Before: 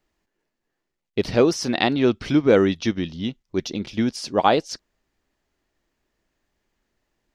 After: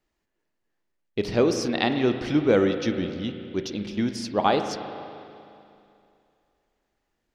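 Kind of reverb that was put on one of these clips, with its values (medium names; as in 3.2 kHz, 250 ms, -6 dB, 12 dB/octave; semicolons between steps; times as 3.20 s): spring tank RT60 2.6 s, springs 34/39 ms, chirp 25 ms, DRR 6.5 dB; trim -4 dB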